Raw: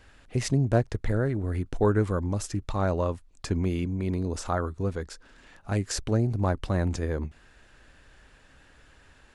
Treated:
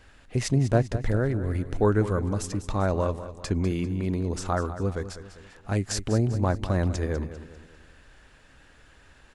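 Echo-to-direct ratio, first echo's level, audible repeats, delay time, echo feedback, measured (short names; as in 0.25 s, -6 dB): -11.5 dB, -12.5 dB, 4, 0.198 s, 44%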